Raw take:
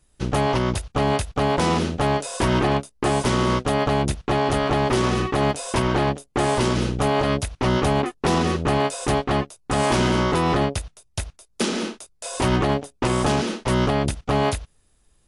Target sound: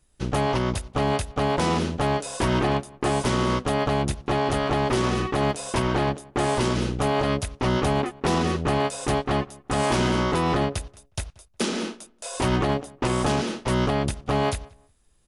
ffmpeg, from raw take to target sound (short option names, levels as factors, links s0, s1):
-filter_complex "[0:a]asplit=2[s0][s1];[s1]adelay=181,lowpass=f=2200:p=1,volume=0.0708,asplit=2[s2][s3];[s3]adelay=181,lowpass=f=2200:p=1,volume=0.22[s4];[s0][s2][s4]amix=inputs=3:normalize=0,volume=0.75"